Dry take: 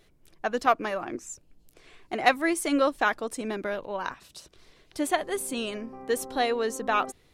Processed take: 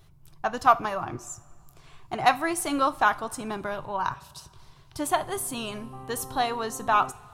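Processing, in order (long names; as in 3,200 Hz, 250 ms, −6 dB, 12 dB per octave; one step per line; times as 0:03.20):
graphic EQ with 10 bands 125 Hz +12 dB, 250 Hz −9 dB, 500 Hz −11 dB, 1,000 Hz +6 dB, 2,000 Hz −10 dB, 4,000 Hz −3 dB, 8,000 Hz −4 dB
coupled-rooms reverb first 0.31 s, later 2.2 s, from −18 dB, DRR 12 dB
level +5.5 dB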